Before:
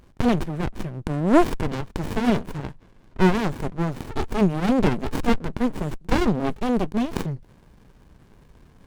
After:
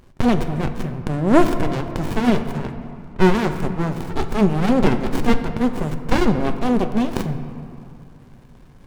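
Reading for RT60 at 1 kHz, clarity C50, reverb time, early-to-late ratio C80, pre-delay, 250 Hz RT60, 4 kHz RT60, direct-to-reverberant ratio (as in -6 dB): 2.7 s, 9.5 dB, 2.6 s, 10.0 dB, 5 ms, 3.0 s, 1.4 s, 7.0 dB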